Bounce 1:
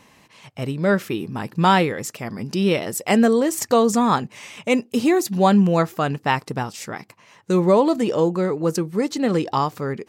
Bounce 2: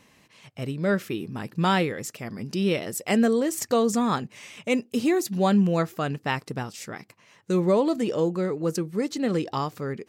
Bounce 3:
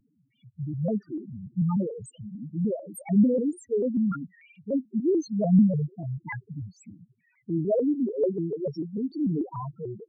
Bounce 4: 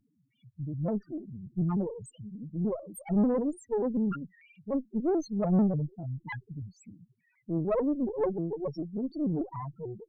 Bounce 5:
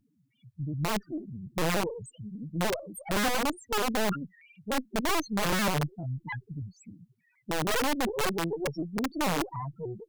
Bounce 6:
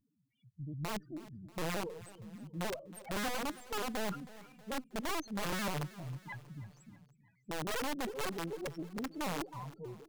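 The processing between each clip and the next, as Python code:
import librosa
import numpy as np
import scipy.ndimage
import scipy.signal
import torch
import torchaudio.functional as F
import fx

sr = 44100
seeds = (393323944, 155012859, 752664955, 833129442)

y1 = fx.peak_eq(x, sr, hz=910.0, db=-5.0, octaves=0.73)
y1 = F.gain(torch.from_numpy(y1), -4.5).numpy()
y2 = fx.rotary(y1, sr, hz=0.9)
y2 = fx.spec_topn(y2, sr, count=2)
y2 = fx.vibrato_shape(y2, sr, shape='square', rate_hz=3.4, depth_cents=160.0)
y2 = F.gain(torch.from_numpy(y2), 3.0).numpy()
y3 = fx.tube_stage(y2, sr, drive_db=20.0, bias=0.65)
y4 = (np.mod(10.0 ** (24.5 / 20.0) * y3 + 1.0, 2.0) - 1.0) / 10.0 ** (24.5 / 20.0)
y4 = F.gain(torch.from_numpy(y4), 2.0).numpy()
y5 = fx.echo_feedback(y4, sr, ms=319, feedback_pct=53, wet_db=-18.0)
y5 = F.gain(torch.from_numpy(y5), -9.0).numpy()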